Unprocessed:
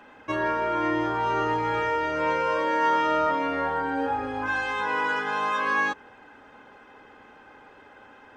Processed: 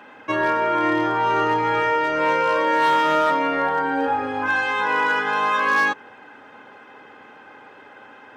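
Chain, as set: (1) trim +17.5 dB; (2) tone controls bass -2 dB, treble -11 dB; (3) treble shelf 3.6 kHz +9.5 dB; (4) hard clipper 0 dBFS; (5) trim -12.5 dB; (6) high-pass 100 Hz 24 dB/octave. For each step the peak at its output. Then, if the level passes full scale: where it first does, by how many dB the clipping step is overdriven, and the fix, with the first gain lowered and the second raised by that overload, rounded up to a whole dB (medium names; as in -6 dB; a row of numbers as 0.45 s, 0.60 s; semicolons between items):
+5.0 dBFS, +5.0 dBFS, +5.5 dBFS, 0.0 dBFS, -12.5 dBFS, -9.0 dBFS; step 1, 5.5 dB; step 1 +11.5 dB, step 5 -6.5 dB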